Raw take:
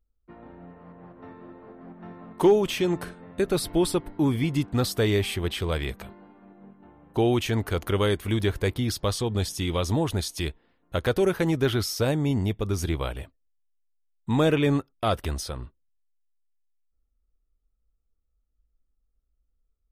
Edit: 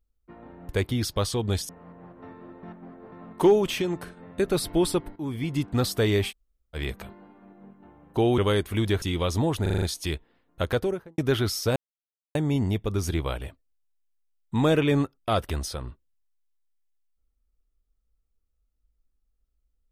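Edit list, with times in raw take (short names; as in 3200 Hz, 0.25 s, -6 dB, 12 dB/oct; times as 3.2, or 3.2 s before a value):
1.63–2.12 reverse
2.82–3.17 gain -3.5 dB
4.16–4.7 fade in, from -13.5 dB
5.3–5.76 room tone, crossfade 0.06 s
7.38–7.92 cut
8.56–9.56 move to 0.69
10.16 stutter 0.04 s, 6 plays
10.99–11.52 studio fade out
12.1 insert silence 0.59 s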